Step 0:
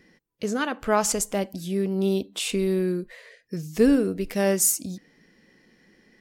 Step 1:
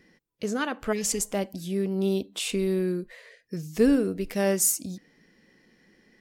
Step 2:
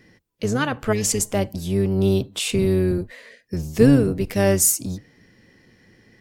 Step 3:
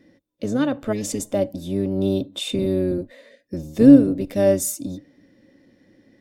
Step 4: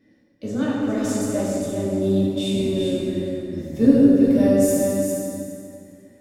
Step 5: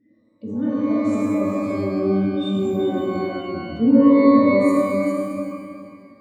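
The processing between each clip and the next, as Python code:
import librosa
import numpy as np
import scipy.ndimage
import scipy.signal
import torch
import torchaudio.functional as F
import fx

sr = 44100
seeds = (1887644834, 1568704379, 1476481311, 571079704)

y1 = fx.spec_repair(x, sr, seeds[0], start_s=0.95, length_s=0.23, low_hz=460.0, high_hz=1700.0, source='after')
y1 = F.gain(torch.from_numpy(y1), -2.0).numpy()
y2 = fx.octave_divider(y1, sr, octaves=1, level_db=-2.0)
y2 = F.gain(torch.from_numpy(y2), 5.5).numpy()
y3 = fx.small_body(y2, sr, hz=(290.0, 550.0, 3600.0), ring_ms=40, db=16)
y3 = F.gain(torch.from_numpy(y3), -8.5).numpy()
y4 = fx.echo_feedback(y3, sr, ms=404, feedback_pct=15, wet_db=-5.5)
y4 = fx.rev_plate(y4, sr, seeds[1], rt60_s=2.3, hf_ratio=0.7, predelay_ms=0, drr_db=-7.0)
y4 = F.gain(torch.from_numpy(y4), -8.5).numpy()
y5 = fx.spec_expand(y4, sr, power=1.7)
y5 = fx.rev_shimmer(y5, sr, seeds[2], rt60_s=1.1, semitones=12, shimmer_db=-8, drr_db=1.5)
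y5 = F.gain(torch.from_numpy(y5), -2.0).numpy()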